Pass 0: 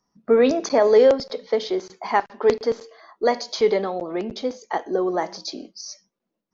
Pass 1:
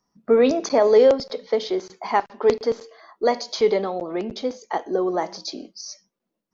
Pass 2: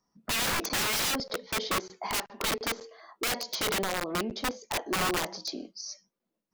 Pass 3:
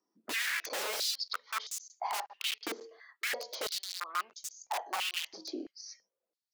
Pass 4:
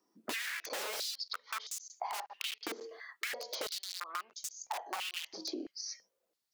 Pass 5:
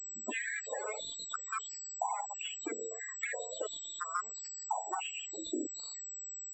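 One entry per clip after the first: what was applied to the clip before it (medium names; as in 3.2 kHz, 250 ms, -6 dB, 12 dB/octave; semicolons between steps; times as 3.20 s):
dynamic bell 1.7 kHz, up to -4 dB, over -42 dBFS, Q 3.8
integer overflow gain 20 dB; trim -3.5 dB
step-sequenced high-pass 3 Hz 330–6700 Hz; trim -8.5 dB
compression 6:1, threshold -43 dBFS, peak gain reduction 14.5 dB; trim +6.5 dB
knee-point frequency compression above 2.7 kHz 1.5:1; loudest bins only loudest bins 16; class-D stage that switches slowly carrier 7.8 kHz; trim +4.5 dB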